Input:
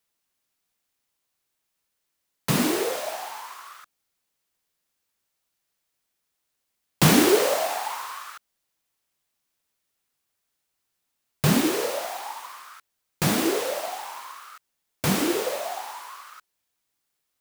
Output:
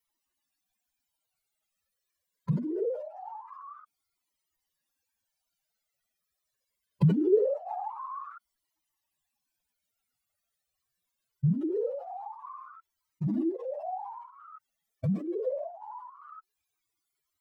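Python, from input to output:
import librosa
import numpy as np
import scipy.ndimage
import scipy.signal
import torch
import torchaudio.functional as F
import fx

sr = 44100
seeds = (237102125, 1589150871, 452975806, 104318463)

y = fx.spec_expand(x, sr, power=3.1)
y = fx.comb_cascade(y, sr, direction='falling', hz=0.23)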